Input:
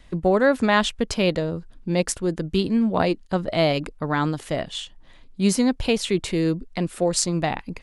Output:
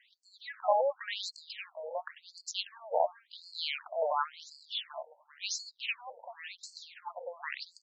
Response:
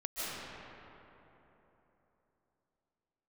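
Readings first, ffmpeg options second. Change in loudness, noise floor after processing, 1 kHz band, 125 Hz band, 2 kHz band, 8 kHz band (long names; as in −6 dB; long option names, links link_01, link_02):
−13.0 dB, −70 dBFS, −7.5 dB, below −40 dB, −12.5 dB, −15.0 dB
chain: -af "aecho=1:1:392|784|1176:0.447|0.125|0.035,afftfilt=real='re*between(b*sr/1024,650*pow(6000/650,0.5+0.5*sin(2*PI*0.93*pts/sr))/1.41,650*pow(6000/650,0.5+0.5*sin(2*PI*0.93*pts/sr))*1.41)':imag='im*between(b*sr/1024,650*pow(6000/650,0.5+0.5*sin(2*PI*0.93*pts/sr))/1.41,650*pow(6000/650,0.5+0.5*sin(2*PI*0.93*pts/sr))*1.41)':win_size=1024:overlap=0.75,volume=-3.5dB"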